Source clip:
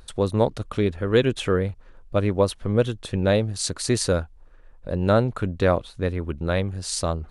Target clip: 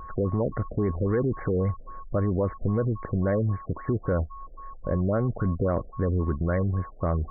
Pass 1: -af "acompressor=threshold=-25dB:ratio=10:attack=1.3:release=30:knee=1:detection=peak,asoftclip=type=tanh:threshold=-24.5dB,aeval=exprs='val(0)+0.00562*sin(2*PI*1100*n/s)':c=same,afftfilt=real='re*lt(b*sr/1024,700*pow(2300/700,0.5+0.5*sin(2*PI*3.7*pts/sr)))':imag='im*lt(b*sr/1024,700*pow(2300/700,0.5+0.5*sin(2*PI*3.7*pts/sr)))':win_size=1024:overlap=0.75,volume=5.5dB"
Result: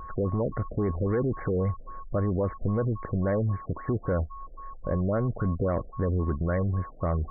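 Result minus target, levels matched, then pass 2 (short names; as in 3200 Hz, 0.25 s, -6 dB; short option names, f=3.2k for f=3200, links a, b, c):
soft clip: distortion +11 dB
-af "acompressor=threshold=-25dB:ratio=10:attack=1.3:release=30:knee=1:detection=peak,asoftclip=type=tanh:threshold=-17.5dB,aeval=exprs='val(0)+0.00562*sin(2*PI*1100*n/s)':c=same,afftfilt=real='re*lt(b*sr/1024,700*pow(2300/700,0.5+0.5*sin(2*PI*3.7*pts/sr)))':imag='im*lt(b*sr/1024,700*pow(2300/700,0.5+0.5*sin(2*PI*3.7*pts/sr)))':win_size=1024:overlap=0.75,volume=5.5dB"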